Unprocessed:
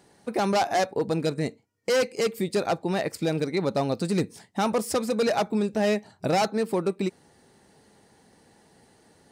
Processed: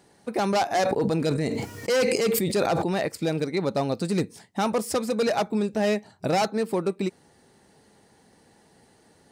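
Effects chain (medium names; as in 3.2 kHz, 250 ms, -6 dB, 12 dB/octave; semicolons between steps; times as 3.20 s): 0.69–3.06 s: decay stretcher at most 24 dB/s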